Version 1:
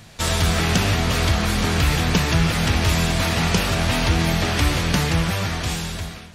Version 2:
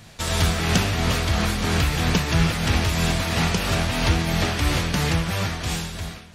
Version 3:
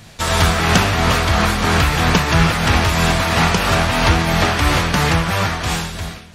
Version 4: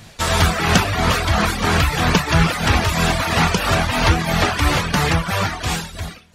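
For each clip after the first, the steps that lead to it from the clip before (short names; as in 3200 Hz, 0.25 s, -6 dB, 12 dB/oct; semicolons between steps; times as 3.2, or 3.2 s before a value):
tremolo triangle 3 Hz, depth 45%
dynamic EQ 1100 Hz, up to +7 dB, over -40 dBFS, Q 0.74; gain +4.5 dB
reverb removal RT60 0.79 s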